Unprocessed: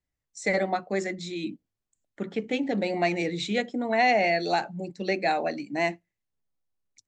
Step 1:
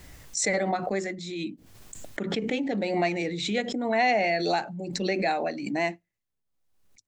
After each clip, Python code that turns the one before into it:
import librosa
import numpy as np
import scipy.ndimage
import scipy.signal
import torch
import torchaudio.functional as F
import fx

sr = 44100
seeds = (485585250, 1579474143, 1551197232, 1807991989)

y = fx.pre_swell(x, sr, db_per_s=43.0)
y = y * librosa.db_to_amplitude(-1.5)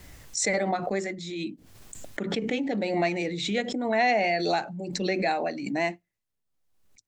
y = fx.wow_flutter(x, sr, seeds[0], rate_hz=2.1, depth_cents=28.0)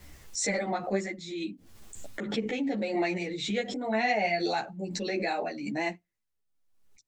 y = fx.ensemble(x, sr)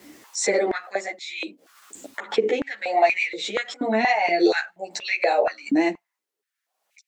y = fx.filter_held_highpass(x, sr, hz=4.2, low_hz=290.0, high_hz=2300.0)
y = y * librosa.db_to_amplitude(4.5)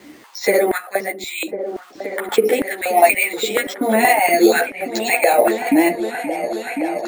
y = np.repeat(scipy.signal.resample_poly(x, 1, 4), 4)[:len(x)]
y = fx.echo_opening(y, sr, ms=525, hz=200, octaves=2, feedback_pct=70, wet_db=-6)
y = y * librosa.db_to_amplitude(6.0)